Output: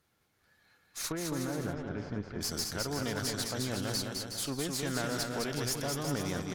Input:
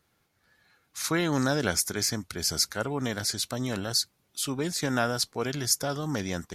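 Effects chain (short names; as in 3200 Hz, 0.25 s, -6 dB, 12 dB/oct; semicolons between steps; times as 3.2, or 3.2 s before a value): compressor 2.5:1, threshold -29 dBFS, peak gain reduction 7 dB; tube stage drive 28 dB, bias 0.65; 1.12–2.41 tape spacing loss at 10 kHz 45 dB; on a send: bouncing-ball echo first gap 0.21 s, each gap 0.75×, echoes 5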